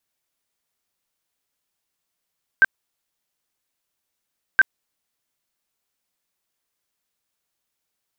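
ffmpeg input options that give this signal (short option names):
-f lavfi -i "aevalsrc='0.376*sin(2*PI*1560*mod(t,1.97))*lt(mod(t,1.97),41/1560)':d=3.94:s=44100"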